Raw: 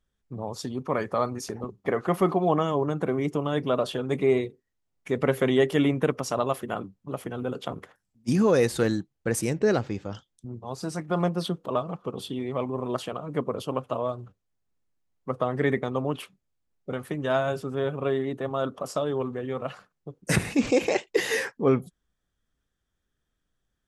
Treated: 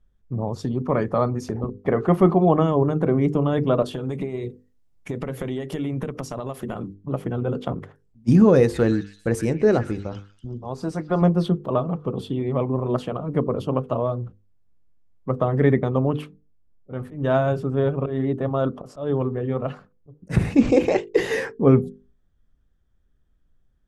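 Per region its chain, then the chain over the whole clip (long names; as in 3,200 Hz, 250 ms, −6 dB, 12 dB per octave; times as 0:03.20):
0:03.82–0:06.94: high-shelf EQ 4,000 Hz +11 dB + downward compressor 10 to 1, threshold −30 dBFS
0:08.61–0:11.22: parametric band 140 Hz −6 dB 1.5 octaves + echo through a band-pass that steps 126 ms, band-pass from 1,900 Hz, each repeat 0.7 octaves, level −8.5 dB
0:15.64–0:20.56: volume swells 138 ms + one half of a high-frequency compander decoder only
whole clip: spectral tilt −3 dB per octave; mains-hum notches 50/100/150/200/250/300/350/400/450/500 Hz; level +2.5 dB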